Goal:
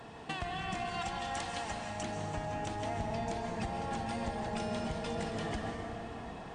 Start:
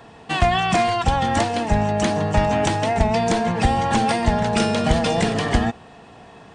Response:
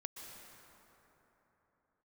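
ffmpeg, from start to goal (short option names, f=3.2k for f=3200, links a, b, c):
-filter_complex "[0:a]acompressor=threshold=-32dB:ratio=8,asettb=1/sr,asplit=3[a][b][c];[a]atrim=end=0.944[d];[b]atrim=start=0.94:end=2.03,asetpts=PTS-STARTPTS,afade=t=in:d=0.004:c=qsin,afade=t=out:st=1.086:d=0.004:c=qsin,tiltshelf=f=970:g=-6.5[e];[c]atrim=start=2.026[f];[d][e]acrossfade=d=0.004:c1=hsin:c2=qsin[g];[g][f]acrossfade=d=0.004:c1=qsin:c2=hsin[h];[1:a]atrim=start_sample=2205,asetrate=40572,aresample=44100[i];[h][i]afir=irnorm=-1:irlink=0"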